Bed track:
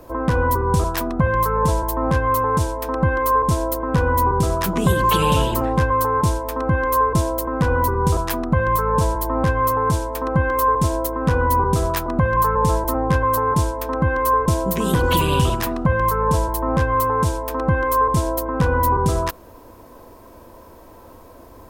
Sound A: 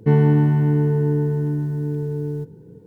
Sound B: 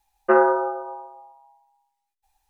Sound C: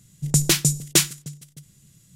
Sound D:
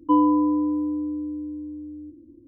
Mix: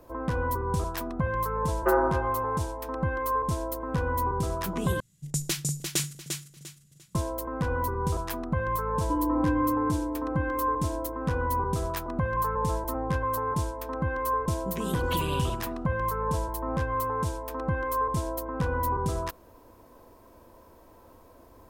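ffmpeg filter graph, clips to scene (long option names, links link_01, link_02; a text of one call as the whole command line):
ffmpeg -i bed.wav -i cue0.wav -i cue1.wav -i cue2.wav -i cue3.wav -filter_complex "[0:a]volume=-10dB[link_01];[3:a]aecho=1:1:348|696|1044:0.501|0.135|0.0365[link_02];[4:a]alimiter=limit=-17dB:level=0:latency=1:release=71[link_03];[link_01]asplit=2[link_04][link_05];[link_04]atrim=end=5.004[link_06];[link_02]atrim=end=2.15,asetpts=PTS-STARTPTS,volume=-11dB[link_07];[link_05]atrim=start=7.146[link_08];[2:a]atrim=end=2.49,asetpts=PTS-STARTPTS,volume=-7dB,afade=type=in:duration=0.004:curve=hsin,afade=type=out:start_time=2.486:duration=0.004:curve=hsin,adelay=1570[link_09];[link_03]atrim=end=2.47,asetpts=PTS-STARTPTS,volume=-4.5dB,afade=type=in:duration=0.004:curve=hsin,afade=type=out:start_time=2.466:duration=0.004:curve=hsin,adelay=9010[link_10];[link_06][link_07]acrossfade=duration=0.004:curve1=hsin:curve2=hsin[link_11];[link_11][link_08]acrossfade=duration=0.004:curve1=hsin:curve2=hsin[link_12];[link_12][link_09][link_10]amix=inputs=3:normalize=0" out.wav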